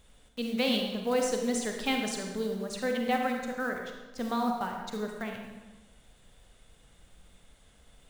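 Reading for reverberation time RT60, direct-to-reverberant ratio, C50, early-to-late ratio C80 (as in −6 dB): 1.2 s, 2.0 dB, 3.0 dB, 5.5 dB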